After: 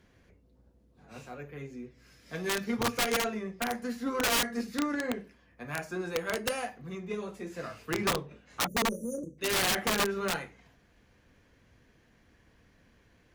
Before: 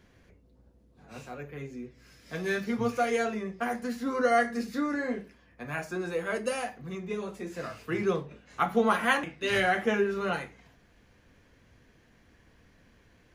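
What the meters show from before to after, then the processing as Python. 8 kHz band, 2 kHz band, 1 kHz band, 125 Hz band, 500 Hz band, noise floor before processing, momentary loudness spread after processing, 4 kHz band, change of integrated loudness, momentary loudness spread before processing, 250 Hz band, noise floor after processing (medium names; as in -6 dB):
+10.5 dB, -2.5 dB, -4.0 dB, -2.0 dB, -4.5 dB, -62 dBFS, 17 LU, +6.5 dB, -1.5 dB, 17 LU, -2.5 dB, -65 dBFS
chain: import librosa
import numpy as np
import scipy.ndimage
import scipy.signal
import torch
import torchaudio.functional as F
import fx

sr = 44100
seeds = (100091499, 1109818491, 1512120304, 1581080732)

y = fx.spec_erase(x, sr, start_s=8.67, length_s=0.72, low_hz=610.0, high_hz=5700.0)
y = (np.mod(10.0 ** (21.0 / 20.0) * y + 1.0, 2.0) - 1.0) / 10.0 ** (21.0 / 20.0)
y = fx.cheby_harmonics(y, sr, harmonics=(3, 6, 8), levels_db=(-22, -39, -41), full_scale_db=-21.0)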